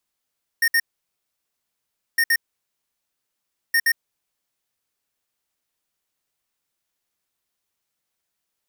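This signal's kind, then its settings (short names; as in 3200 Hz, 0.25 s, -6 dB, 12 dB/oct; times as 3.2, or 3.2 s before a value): beep pattern square 1840 Hz, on 0.06 s, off 0.06 s, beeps 2, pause 1.38 s, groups 3, -17.5 dBFS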